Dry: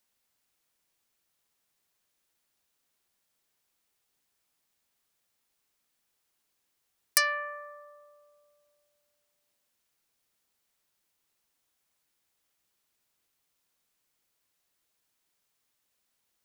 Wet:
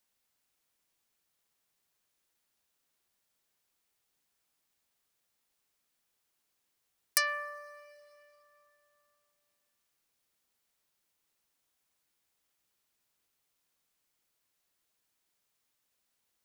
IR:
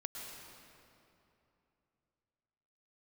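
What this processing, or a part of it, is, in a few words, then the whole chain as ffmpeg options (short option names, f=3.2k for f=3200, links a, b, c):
ducked reverb: -filter_complex "[0:a]asplit=3[a][b][c];[1:a]atrim=start_sample=2205[d];[b][d]afir=irnorm=-1:irlink=0[e];[c]apad=whole_len=725281[f];[e][f]sidechaincompress=threshold=-41dB:ratio=10:attack=12:release=594,volume=-8dB[g];[a][g]amix=inputs=2:normalize=0,volume=-4dB"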